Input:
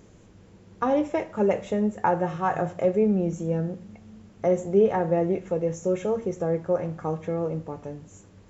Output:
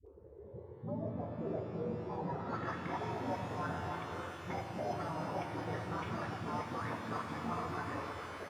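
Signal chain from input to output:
all-pass phaser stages 8, 0.25 Hz, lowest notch 150–1,600 Hz
in parallel at +2 dB: output level in coarse steps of 10 dB
on the sum: bad sample-rate conversion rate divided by 8×, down filtered, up hold
low-pass filter sweep 230 Hz → 1,200 Hz, 0:02.04–0:02.65
single-tap delay 292 ms −14.5 dB
frequency shifter +66 Hz
gate on every frequency bin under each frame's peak −20 dB weak
low-shelf EQ 390 Hz +7.5 dB
all-pass dispersion highs, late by 66 ms, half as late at 450 Hz
reversed playback
downward compressor 6 to 1, threshold −49 dBFS, peak gain reduction 20.5 dB
reversed playback
reverb with rising layers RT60 3.7 s, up +12 semitones, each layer −8 dB, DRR 3.5 dB
level +11 dB

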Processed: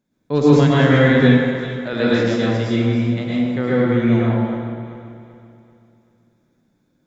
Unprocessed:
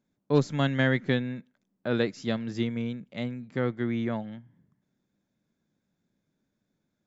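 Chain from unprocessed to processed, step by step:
feedback delay that plays each chunk backwards 193 ms, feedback 62%, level −10.5 dB
0:01.26–0:02.00: spectral tilt +1.5 dB per octave
dense smooth reverb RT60 1.5 s, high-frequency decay 0.5×, pre-delay 95 ms, DRR −7.5 dB
level +3 dB

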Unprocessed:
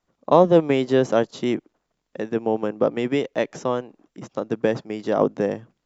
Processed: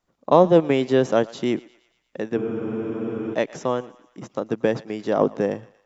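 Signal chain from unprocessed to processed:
feedback echo with a high-pass in the loop 116 ms, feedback 58%, high-pass 710 Hz, level −19 dB
frozen spectrum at 0:02.40, 0.94 s

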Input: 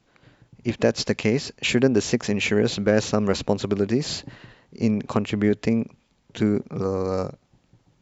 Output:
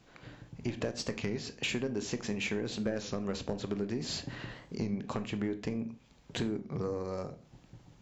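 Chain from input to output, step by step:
downward compressor 5 to 1, threshold −36 dBFS, peak gain reduction 20.5 dB
soft clipping −23.5 dBFS, distortion −23 dB
on a send at −9 dB: convolution reverb RT60 0.35 s, pre-delay 19 ms
on the sum: wow of a warped record 33 1/3 rpm, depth 100 cents
level +3 dB

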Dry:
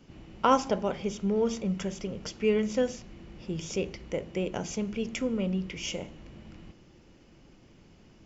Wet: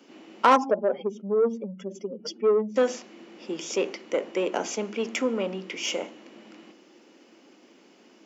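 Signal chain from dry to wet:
0:00.56–0:02.76: expanding power law on the bin magnitudes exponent 2.2
soft clipping −21 dBFS, distortion −13 dB
Butterworth high-pass 240 Hz 36 dB per octave
dynamic equaliser 1,100 Hz, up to +6 dB, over −45 dBFS, Q 0.71
level +5 dB

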